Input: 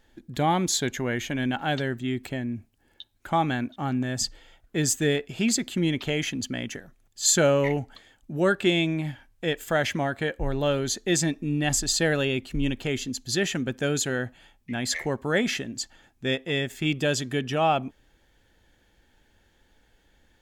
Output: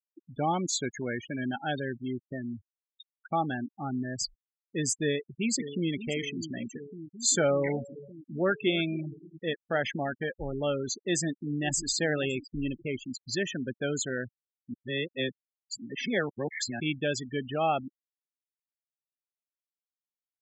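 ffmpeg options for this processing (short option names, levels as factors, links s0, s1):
-filter_complex "[0:a]asplit=2[s0][s1];[s1]afade=t=in:st=5:d=0.01,afade=t=out:st=5.92:d=0.01,aecho=0:1:580|1160|1740|2320|2900|3480|4060|4640|5220|5800|6380|6960:0.281838|0.225471|0.180377|0.144301|0.115441|0.0923528|0.0738822|0.0591058|0.0472846|0.0378277|0.0302622|0.0242097[s2];[s0][s2]amix=inputs=2:normalize=0,asettb=1/sr,asplit=3[s3][s4][s5];[s3]atrim=end=7.354[s6];[s4]atrim=start=7.35:end=9.98,asetpts=PTS-STARTPTS,afade=t=in:d=0.004:c=qsin,afade=t=out:st=2.626:d=0.004:c=qsin,aecho=1:1:283|566|849:0.141|0.048|0.0163,atrim=end_sample=115983[s7];[s5]atrim=start=9.976[s8];[s6][s7]acrossfade=d=0.004:c1=hsin:c2=qsin[s9];[s9][s8]acrossfade=d=0.004:c1=qsin:c2=hsin,asplit=2[s10][s11];[s11]afade=t=in:st=10.92:d=0.01,afade=t=out:st=11.94:d=0.01,aecho=0:1:560|1120|1680|2240|2800:0.211349|0.105674|0.0528372|0.0264186|0.0132093[s12];[s10][s12]amix=inputs=2:normalize=0,asplit=3[s13][s14][s15];[s13]atrim=end=14.742[s16];[s14]atrim=start=14.738:end=16.802,asetpts=PTS-STARTPTS,areverse[s17];[s15]atrim=start=16.798[s18];[s16][s17]acrossfade=d=0.004:c1=hsin:c2=hsin[s19];[s19][s18]acrossfade=d=0.004:c1=hsin:c2=hsin,afftfilt=real='re*gte(hypot(re,im),0.0631)':imag='im*gte(hypot(re,im),0.0631)':win_size=1024:overlap=0.75,lowshelf=f=93:g=-10,bandreject=f=990:w=8.4,volume=0.631"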